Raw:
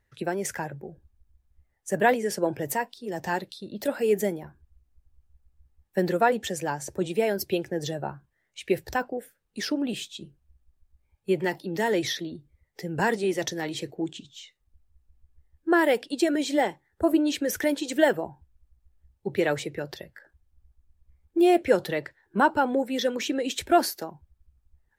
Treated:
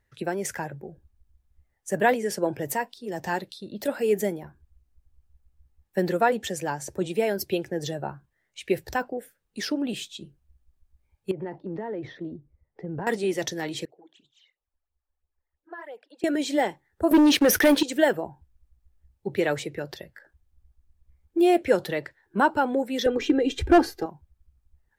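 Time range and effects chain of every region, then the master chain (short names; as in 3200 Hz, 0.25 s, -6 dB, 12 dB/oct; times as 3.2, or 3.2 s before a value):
11.31–13.07 LPF 1100 Hz + compressor 10:1, threshold -28 dBFS
13.85–16.24 three-band isolator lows -22 dB, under 470 Hz, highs -16 dB, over 2100 Hz + compressor 1.5:1, threshold -58 dBFS + phaser stages 12, 3 Hz, lowest notch 120–2000 Hz
17.11–17.83 bell 7400 Hz -14 dB 0.24 oct + sample leveller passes 3
23.06–24.06 RIAA curve playback + comb 2.5 ms, depth 89% + overloaded stage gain 10.5 dB
whole clip: dry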